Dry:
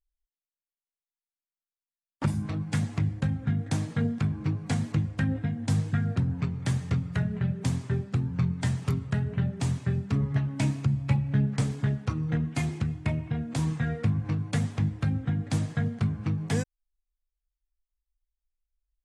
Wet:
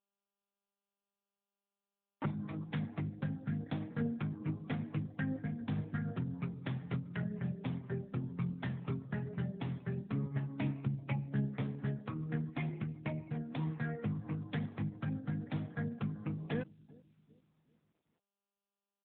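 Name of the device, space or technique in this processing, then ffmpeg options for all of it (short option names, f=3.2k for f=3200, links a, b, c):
mobile call with aggressive noise cancelling: -filter_complex "[0:a]asettb=1/sr,asplit=3[a][b][c];[a]atrim=end=9.414[d];[b]atrim=start=9.41:end=11.41,asetpts=PTS-STARTPTS,afade=t=in:d=0.004:c=qsin,afade=t=out:st=1.996:d=0.004:c=qsin,equalizer=f=6.9k:w=2:g=4[e];[c]atrim=start=11.406[f];[d][e]acrossfade=d=0.004:c1=hsin:c2=qsin[g];[g][f]acrossfade=d=0.004:c1=qsin:c2=hsin,highpass=170,asplit=2[h][i];[i]adelay=387,lowpass=f=1.1k:p=1,volume=-21dB,asplit=2[j][k];[k]adelay=387,lowpass=f=1.1k:p=1,volume=0.49,asplit=2[l][m];[m]adelay=387,lowpass=f=1.1k:p=1,volume=0.49,asplit=2[n][o];[o]adelay=387,lowpass=f=1.1k:p=1,volume=0.49[p];[h][j][l][n][p]amix=inputs=5:normalize=0,afftdn=nr=18:nf=-52,volume=-5.5dB" -ar 8000 -c:a libopencore_amrnb -b:a 10200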